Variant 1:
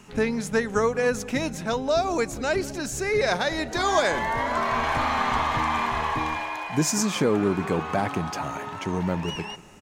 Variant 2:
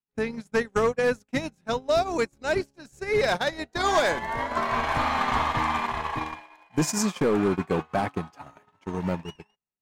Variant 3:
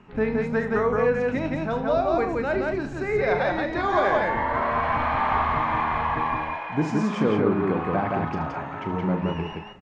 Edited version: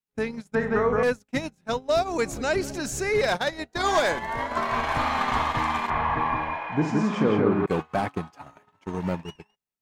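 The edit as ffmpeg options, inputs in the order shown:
-filter_complex "[2:a]asplit=2[a][b];[1:a]asplit=4[c][d][e][f];[c]atrim=end=0.552[g];[a]atrim=start=0.548:end=1.032[h];[d]atrim=start=1.028:end=2.222[i];[0:a]atrim=start=2.218:end=3.152[j];[e]atrim=start=3.148:end=5.902[k];[b]atrim=start=5.898:end=7.662[l];[f]atrim=start=7.658[m];[g][h]acrossfade=d=0.004:c1=hsin:c2=hsin[n];[n][i]acrossfade=d=0.004:c1=hsin:c2=hsin[o];[o][j]acrossfade=d=0.004:c1=hsin:c2=hsin[p];[p][k]acrossfade=d=0.004:c1=hsin:c2=hsin[q];[q][l]acrossfade=d=0.004:c1=hsin:c2=hsin[r];[r][m]acrossfade=d=0.004:c1=hsin:c2=hsin"

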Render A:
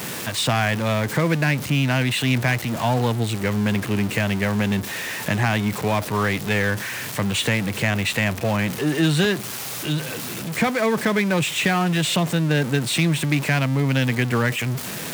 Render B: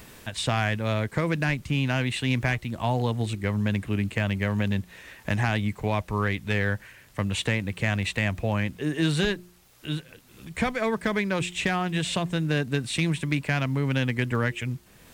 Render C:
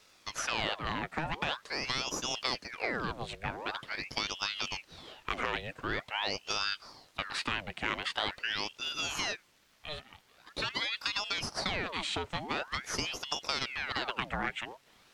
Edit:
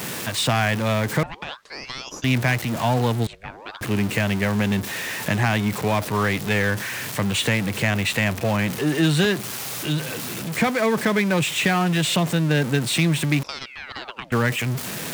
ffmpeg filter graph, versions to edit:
-filter_complex "[2:a]asplit=3[a][b][c];[0:a]asplit=4[d][e][f][g];[d]atrim=end=1.232[h];[a]atrim=start=1.228:end=2.242[i];[e]atrim=start=2.238:end=3.272[j];[b]atrim=start=3.268:end=3.812[k];[f]atrim=start=3.808:end=13.432[l];[c]atrim=start=13.428:end=14.322[m];[g]atrim=start=14.318[n];[h][i]acrossfade=d=0.004:c1=hsin:c2=hsin[o];[o][j]acrossfade=d=0.004:c1=hsin:c2=hsin[p];[p][k]acrossfade=d=0.004:c1=hsin:c2=hsin[q];[q][l]acrossfade=d=0.004:c1=hsin:c2=hsin[r];[r][m]acrossfade=d=0.004:c1=hsin:c2=hsin[s];[s][n]acrossfade=d=0.004:c1=hsin:c2=hsin"

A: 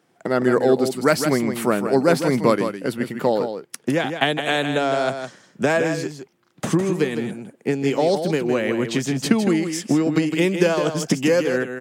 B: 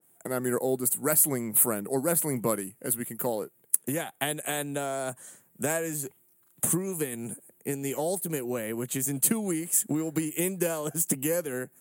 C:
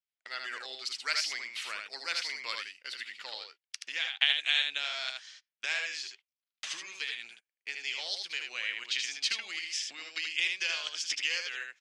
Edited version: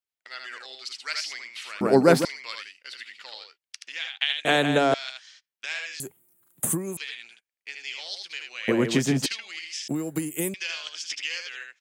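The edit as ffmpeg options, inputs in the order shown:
-filter_complex "[0:a]asplit=3[a][b][c];[1:a]asplit=2[d][e];[2:a]asplit=6[f][g][h][i][j][k];[f]atrim=end=1.812[l];[a]atrim=start=1.808:end=2.252[m];[g]atrim=start=2.248:end=4.452[n];[b]atrim=start=4.448:end=4.942[o];[h]atrim=start=4.938:end=6.002[p];[d]atrim=start=5.998:end=6.972[q];[i]atrim=start=6.968:end=8.682[r];[c]atrim=start=8.678:end=9.262[s];[j]atrim=start=9.258:end=9.882[t];[e]atrim=start=9.878:end=10.542[u];[k]atrim=start=10.538[v];[l][m]acrossfade=d=0.004:c1=hsin:c2=hsin[w];[w][n]acrossfade=d=0.004:c1=hsin:c2=hsin[x];[x][o]acrossfade=d=0.004:c1=hsin:c2=hsin[y];[y][p]acrossfade=d=0.004:c1=hsin:c2=hsin[z];[z][q]acrossfade=d=0.004:c1=hsin:c2=hsin[aa];[aa][r]acrossfade=d=0.004:c1=hsin:c2=hsin[ab];[ab][s]acrossfade=d=0.004:c1=hsin:c2=hsin[ac];[ac][t]acrossfade=d=0.004:c1=hsin:c2=hsin[ad];[ad][u]acrossfade=d=0.004:c1=hsin:c2=hsin[ae];[ae][v]acrossfade=d=0.004:c1=hsin:c2=hsin"

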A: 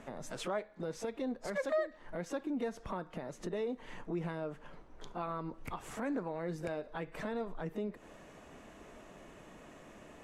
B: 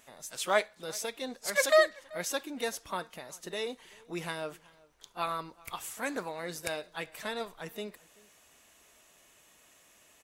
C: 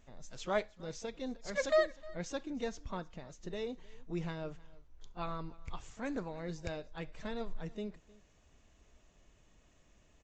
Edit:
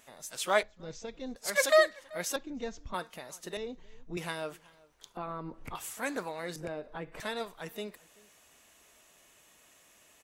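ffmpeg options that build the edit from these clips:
-filter_complex "[2:a]asplit=3[a][b][c];[0:a]asplit=2[d][e];[1:a]asplit=6[f][g][h][i][j][k];[f]atrim=end=0.632[l];[a]atrim=start=0.628:end=1.362[m];[g]atrim=start=1.358:end=2.362[n];[b]atrim=start=2.358:end=2.942[o];[h]atrim=start=2.938:end=3.572[p];[c]atrim=start=3.568:end=4.172[q];[i]atrim=start=4.168:end=5.172[r];[d]atrim=start=5.168:end=5.752[s];[j]atrim=start=5.748:end=6.562[t];[e]atrim=start=6.558:end=7.202[u];[k]atrim=start=7.198[v];[l][m]acrossfade=d=0.004:c1=hsin:c2=hsin[w];[w][n]acrossfade=d=0.004:c1=hsin:c2=hsin[x];[x][o]acrossfade=d=0.004:c1=hsin:c2=hsin[y];[y][p]acrossfade=d=0.004:c1=hsin:c2=hsin[z];[z][q]acrossfade=d=0.004:c1=hsin:c2=hsin[aa];[aa][r]acrossfade=d=0.004:c1=hsin:c2=hsin[ab];[ab][s]acrossfade=d=0.004:c1=hsin:c2=hsin[ac];[ac][t]acrossfade=d=0.004:c1=hsin:c2=hsin[ad];[ad][u]acrossfade=d=0.004:c1=hsin:c2=hsin[ae];[ae][v]acrossfade=d=0.004:c1=hsin:c2=hsin"

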